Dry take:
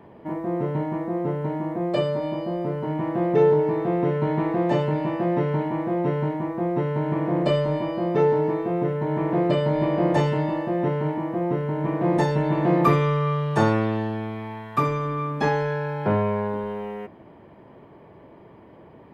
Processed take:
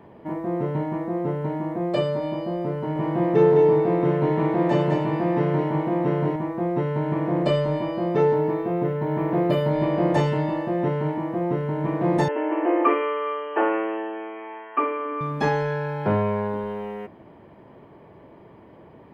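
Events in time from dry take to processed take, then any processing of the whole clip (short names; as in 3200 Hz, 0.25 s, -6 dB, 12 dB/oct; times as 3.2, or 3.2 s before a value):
2.75–6.36 echo 0.207 s -4.5 dB
8.34–9.71 decimation joined by straight lines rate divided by 3×
12.28–15.21 brick-wall FIR band-pass 250–3200 Hz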